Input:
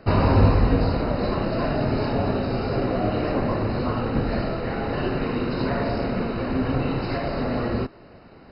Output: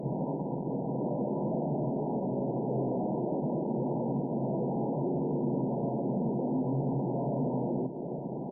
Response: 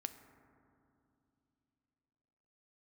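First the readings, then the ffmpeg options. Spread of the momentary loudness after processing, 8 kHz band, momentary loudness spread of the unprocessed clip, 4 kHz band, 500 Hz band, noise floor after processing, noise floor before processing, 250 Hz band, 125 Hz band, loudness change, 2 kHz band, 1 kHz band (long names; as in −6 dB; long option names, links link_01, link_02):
3 LU, can't be measured, 7 LU, below −40 dB, −7.0 dB, −36 dBFS, −48 dBFS, −5.5 dB, −9.5 dB, −8.0 dB, below −40 dB, −9.5 dB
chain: -filter_complex "[0:a]alimiter=limit=-16.5dB:level=0:latency=1:release=227,aresample=8000,volume=32dB,asoftclip=hard,volume=-32dB,aresample=44100,acompressor=threshold=-42dB:ratio=8,asplit=2[link_01][link_02];[1:a]atrim=start_sample=2205,asetrate=57330,aresample=44100,lowshelf=frequency=88:gain=-3[link_03];[link_02][link_03]afir=irnorm=-1:irlink=0,volume=-2dB[link_04];[link_01][link_04]amix=inputs=2:normalize=0,acrusher=samples=13:mix=1:aa=0.000001:lfo=1:lforange=20.8:lforate=0.57,lowshelf=frequency=350:gain=8.5,bandreject=frequency=60:width_type=h:width=6,bandreject=frequency=120:width_type=h:width=6,bandreject=frequency=180:width_type=h:width=6,bandreject=frequency=240:width_type=h:width=6,bandreject=frequency=300:width_type=h:width=6,aecho=1:1:114|228|342|456|570:0.188|0.0923|0.0452|0.0222|0.0109,afftfilt=real='re*between(b*sr/4096,120,1000)':imag='im*between(b*sr/4096,120,1000)':win_size=4096:overlap=0.75,volume=5.5dB" -ar 48000 -c:a libopus -b:a 48k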